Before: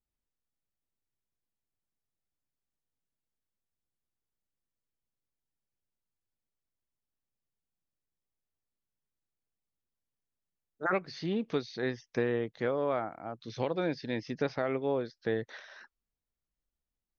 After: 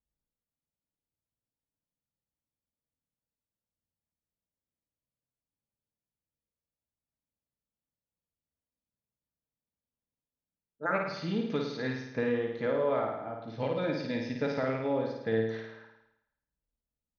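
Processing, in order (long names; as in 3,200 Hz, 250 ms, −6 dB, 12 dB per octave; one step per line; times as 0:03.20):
low-pass that shuts in the quiet parts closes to 780 Hz, open at −30.5 dBFS
notch comb filter 370 Hz
flutter between parallel walls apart 9.2 metres, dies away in 0.86 s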